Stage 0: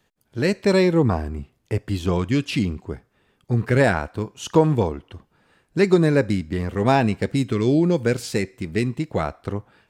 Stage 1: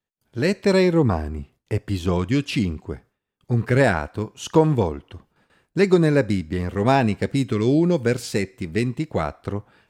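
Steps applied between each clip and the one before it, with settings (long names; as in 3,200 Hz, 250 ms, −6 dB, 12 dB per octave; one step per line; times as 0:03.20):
noise gate with hold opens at −50 dBFS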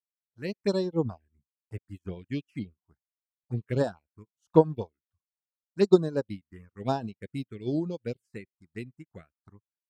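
phaser swept by the level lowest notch 290 Hz, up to 2,200 Hz, full sweep at −13.5 dBFS
reverb reduction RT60 0.68 s
expander for the loud parts 2.5 to 1, over −40 dBFS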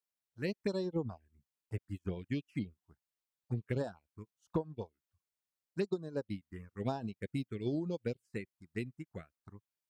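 downward compressor 16 to 1, threshold −32 dBFS, peak gain reduction 21 dB
level +1 dB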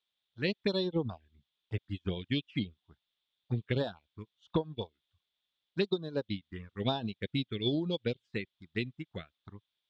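low-pass with resonance 3,500 Hz, resonance Q 8.6
level +3.5 dB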